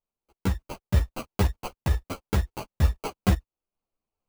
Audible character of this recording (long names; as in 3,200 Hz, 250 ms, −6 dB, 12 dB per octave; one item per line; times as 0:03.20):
aliases and images of a low sample rate 1,800 Hz, jitter 0%
sample-and-hold tremolo 2.4 Hz
a shimmering, thickened sound